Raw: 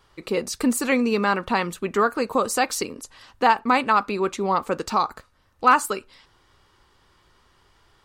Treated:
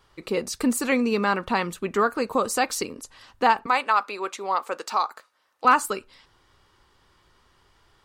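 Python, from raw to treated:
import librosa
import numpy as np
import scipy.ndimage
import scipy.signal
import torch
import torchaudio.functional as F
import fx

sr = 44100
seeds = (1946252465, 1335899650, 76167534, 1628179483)

y = fx.highpass(x, sr, hz=560.0, slope=12, at=(3.66, 5.65))
y = y * librosa.db_to_amplitude(-1.5)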